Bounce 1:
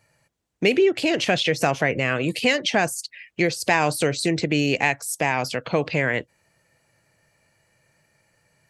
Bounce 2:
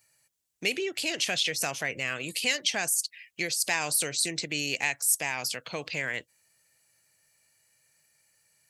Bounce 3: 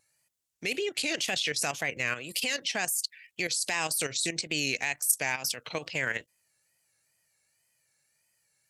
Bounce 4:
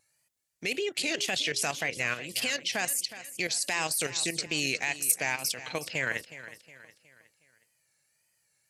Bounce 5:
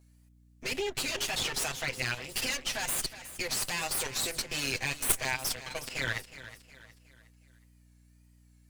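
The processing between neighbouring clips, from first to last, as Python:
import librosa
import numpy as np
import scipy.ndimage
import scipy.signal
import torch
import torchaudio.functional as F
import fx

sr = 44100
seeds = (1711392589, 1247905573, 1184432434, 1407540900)

y1 = F.preemphasis(torch.from_numpy(x), 0.9).numpy()
y1 = y1 * librosa.db_to_amplitude(4.0)
y2 = fx.level_steps(y1, sr, step_db=11)
y2 = fx.wow_flutter(y2, sr, seeds[0], rate_hz=2.1, depth_cents=100.0)
y2 = y2 * librosa.db_to_amplitude(3.5)
y3 = np.clip(y2, -10.0 ** (-12.5 / 20.0), 10.0 ** (-12.5 / 20.0))
y3 = fx.echo_feedback(y3, sr, ms=365, feedback_pct=42, wet_db=-14.5)
y4 = fx.lower_of_two(y3, sr, delay_ms=7.8)
y4 = fx.add_hum(y4, sr, base_hz=60, snr_db=25)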